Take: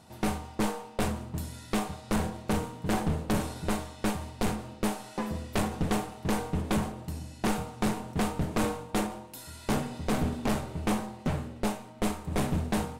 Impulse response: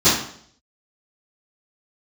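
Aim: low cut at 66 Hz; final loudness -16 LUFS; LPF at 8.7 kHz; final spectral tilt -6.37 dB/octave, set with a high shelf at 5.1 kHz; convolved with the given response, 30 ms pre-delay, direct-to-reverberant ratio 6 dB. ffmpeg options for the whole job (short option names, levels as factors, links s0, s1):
-filter_complex "[0:a]highpass=66,lowpass=8700,highshelf=f=5100:g=-8.5,asplit=2[s0][s1];[1:a]atrim=start_sample=2205,adelay=30[s2];[s1][s2]afir=irnorm=-1:irlink=0,volume=0.0422[s3];[s0][s3]amix=inputs=2:normalize=0,volume=5.31"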